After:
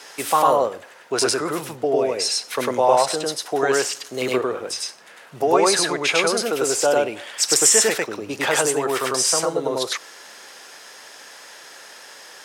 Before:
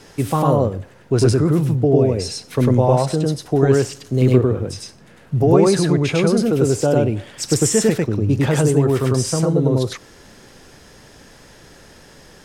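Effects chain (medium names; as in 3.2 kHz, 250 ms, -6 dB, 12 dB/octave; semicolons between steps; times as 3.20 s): high-pass 770 Hz 12 dB/octave; trim +6.5 dB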